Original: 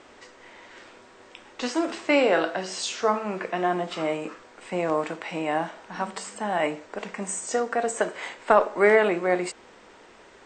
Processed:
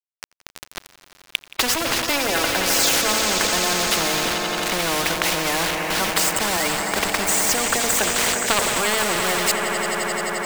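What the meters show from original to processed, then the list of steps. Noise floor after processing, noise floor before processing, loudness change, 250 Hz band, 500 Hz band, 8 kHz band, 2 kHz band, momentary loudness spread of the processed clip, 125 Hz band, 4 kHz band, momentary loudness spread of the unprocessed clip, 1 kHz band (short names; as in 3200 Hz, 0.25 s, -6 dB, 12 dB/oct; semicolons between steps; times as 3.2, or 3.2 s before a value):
-56 dBFS, -52 dBFS, +6.5 dB, +1.5 dB, -1.5 dB, +17.0 dB, +8.0 dB, 5 LU, +7.0 dB, +16.5 dB, 14 LU, +4.0 dB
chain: spectral gate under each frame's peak -15 dB strong; low shelf 74 Hz -9 dB; sample leveller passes 1; sample gate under -36.5 dBFS; on a send: swelling echo 87 ms, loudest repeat 5, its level -18 dB; on the sum: spectral compressor 4:1; gain +4.5 dB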